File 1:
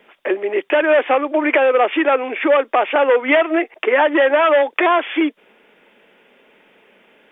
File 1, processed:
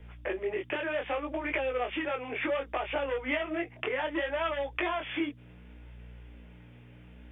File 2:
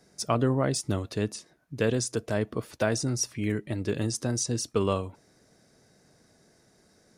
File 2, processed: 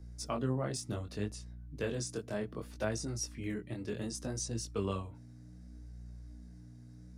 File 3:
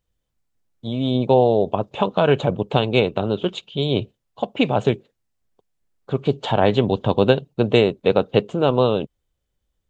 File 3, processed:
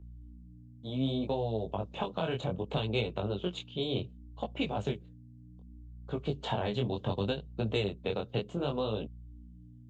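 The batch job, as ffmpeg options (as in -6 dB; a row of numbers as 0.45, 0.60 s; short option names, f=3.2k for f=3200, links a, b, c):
-filter_complex "[0:a]aeval=exprs='val(0)+0.0112*(sin(2*PI*60*n/s)+sin(2*PI*2*60*n/s)/2+sin(2*PI*3*60*n/s)/3+sin(2*PI*4*60*n/s)/4+sin(2*PI*5*60*n/s)/5)':c=same,acrossover=split=140|3000[a][b][c];[b]acompressor=threshold=-21dB:ratio=6[d];[a][d][c]amix=inputs=3:normalize=0,flanger=delay=18:depth=6.3:speed=0.66,volume=-6dB"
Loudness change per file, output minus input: -16.5, -9.5, -14.0 LU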